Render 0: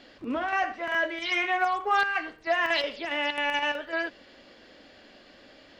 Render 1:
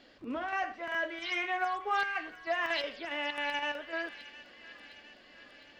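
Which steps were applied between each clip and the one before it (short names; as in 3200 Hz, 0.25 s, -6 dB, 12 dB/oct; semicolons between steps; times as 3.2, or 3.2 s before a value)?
thin delay 0.709 s, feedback 61%, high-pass 1800 Hz, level -13 dB; gain -6.5 dB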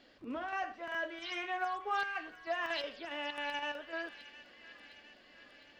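dynamic EQ 2100 Hz, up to -6 dB, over -54 dBFS, Q 5.6; gain -3.5 dB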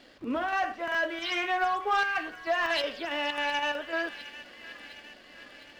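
sample leveller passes 1; gain +6 dB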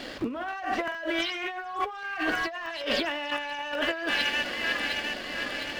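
negative-ratio compressor -40 dBFS, ratio -1; gain +8.5 dB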